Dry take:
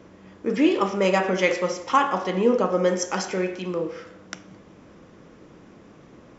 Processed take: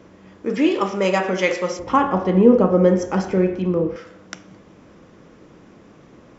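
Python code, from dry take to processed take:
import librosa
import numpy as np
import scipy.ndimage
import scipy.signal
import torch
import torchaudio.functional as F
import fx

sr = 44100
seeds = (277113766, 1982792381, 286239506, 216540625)

y = fx.tilt_eq(x, sr, slope=-4.0, at=(1.79, 3.96))
y = F.gain(torch.from_numpy(y), 1.5).numpy()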